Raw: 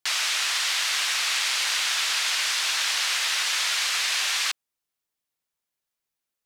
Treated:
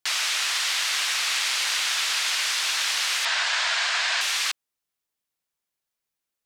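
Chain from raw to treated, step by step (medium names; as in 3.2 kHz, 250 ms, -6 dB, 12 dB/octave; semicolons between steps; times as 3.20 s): 3.25–4.21 s: cabinet simulation 390–7300 Hz, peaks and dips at 670 Hz +10 dB, 960 Hz +6 dB, 1.6 kHz +7 dB, 6 kHz -4 dB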